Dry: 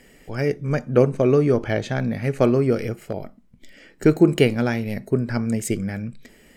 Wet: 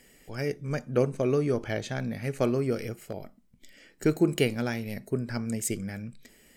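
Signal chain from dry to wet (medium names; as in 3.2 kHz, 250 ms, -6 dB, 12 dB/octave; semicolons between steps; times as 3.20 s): treble shelf 3.9 kHz +9.5 dB; trim -8.5 dB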